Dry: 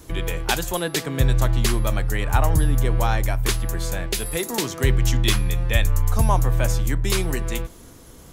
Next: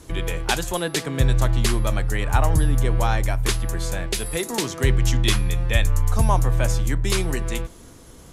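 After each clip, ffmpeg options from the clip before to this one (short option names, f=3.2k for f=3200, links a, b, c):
-af "lowpass=f=12k:w=0.5412,lowpass=f=12k:w=1.3066"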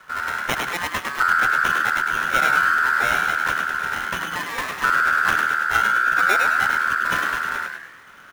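-filter_complex "[0:a]acrusher=samples=14:mix=1:aa=0.000001,aeval=exprs='val(0)*sin(2*PI*1400*n/s)':c=same,asplit=6[a][b][c][d][e][f];[b]adelay=103,afreqshift=130,volume=-4.5dB[g];[c]adelay=206,afreqshift=260,volume=-12.2dB[h];[d]adelay=309,afreqshift=390,volume=-20dB[i];[e]adelay=412,afreqshift=520,volume=-27.7dB[j];[f]adelay=515,afreqshift=650,volume=-35.5dB[k];[a][g][h][i][j][k]amix=inputs=6:normalize=0"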